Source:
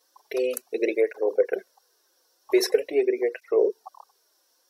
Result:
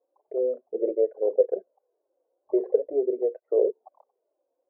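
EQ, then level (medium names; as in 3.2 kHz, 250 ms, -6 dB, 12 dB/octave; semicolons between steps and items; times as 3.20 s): four-pole ladder low-pass 660 Hz, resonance 60%; +3.5 dB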